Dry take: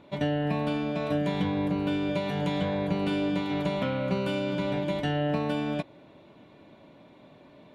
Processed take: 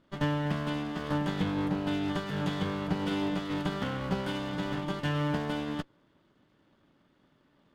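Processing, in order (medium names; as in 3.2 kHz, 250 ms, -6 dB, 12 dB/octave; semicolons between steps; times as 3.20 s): comb filter that takes the minimum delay 0.62 ms; upward expansion 1.5:1, over -49 dBFS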